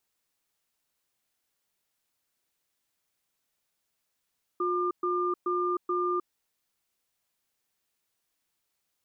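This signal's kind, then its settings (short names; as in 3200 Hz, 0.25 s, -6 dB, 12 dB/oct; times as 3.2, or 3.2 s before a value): cadence 357 Hz, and 1200 Hz, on 0.31 s, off 0.12 s, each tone -28 dBFS 1.66 s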